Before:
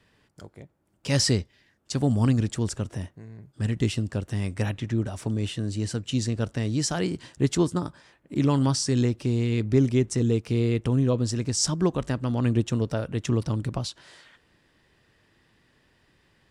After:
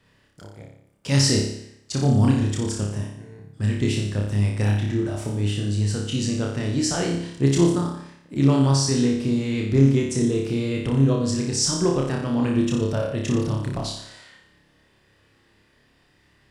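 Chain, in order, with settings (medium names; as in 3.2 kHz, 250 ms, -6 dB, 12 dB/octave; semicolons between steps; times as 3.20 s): flutter echo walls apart 5 m, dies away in 0.71 s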